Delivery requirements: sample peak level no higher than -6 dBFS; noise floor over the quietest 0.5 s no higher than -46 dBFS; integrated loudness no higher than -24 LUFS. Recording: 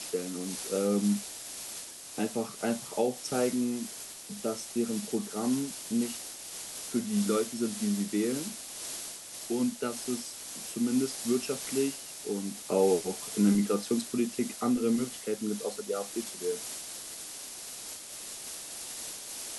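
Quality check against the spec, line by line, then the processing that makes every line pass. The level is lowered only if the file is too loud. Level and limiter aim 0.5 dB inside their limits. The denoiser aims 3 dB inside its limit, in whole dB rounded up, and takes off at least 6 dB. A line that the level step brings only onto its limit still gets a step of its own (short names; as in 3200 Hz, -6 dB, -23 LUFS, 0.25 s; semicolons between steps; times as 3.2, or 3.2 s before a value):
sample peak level -14.0 dBFS: OK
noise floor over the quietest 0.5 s -43 dBFS: fail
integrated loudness -32.0 LUFS: OK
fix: denoiser 6 dB, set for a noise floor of -43 dBFS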